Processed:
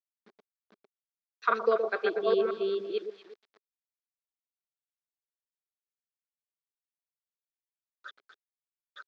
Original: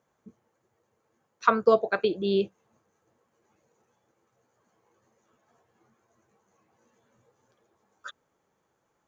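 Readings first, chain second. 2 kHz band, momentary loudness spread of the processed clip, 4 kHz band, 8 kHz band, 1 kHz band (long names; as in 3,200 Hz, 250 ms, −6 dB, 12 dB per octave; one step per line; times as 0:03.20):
−1.5 dB, 9 LU, −3.5 dB, can't be measured, −4.0 dB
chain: delay that plays each chunk backwards 502 ms, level −2 dB
parametric band 2,400 Hz +5 dB 1.9 octaves
delay that swaps between a low-pass and a high-pass 119 ms, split 990 Hz, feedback 51%, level −6.5 dB
bit reduction 8 bits
loudspeaker in its box 370–4,600 Hz, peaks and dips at 400 Hz +6 dB, 950 Hz −5 dB, 2,800 Hz −6 dB
level −7 dB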